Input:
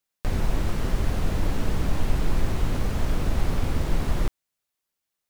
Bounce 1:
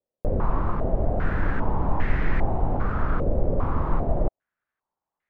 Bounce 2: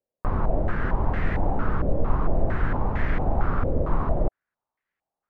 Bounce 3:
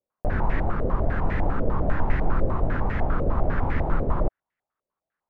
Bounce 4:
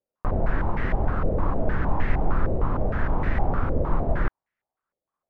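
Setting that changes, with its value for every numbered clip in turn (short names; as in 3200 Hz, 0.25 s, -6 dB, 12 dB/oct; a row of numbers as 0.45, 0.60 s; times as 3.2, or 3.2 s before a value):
stepped low-pass, rate: 2.5, 4.4, 10, 6.5 Hz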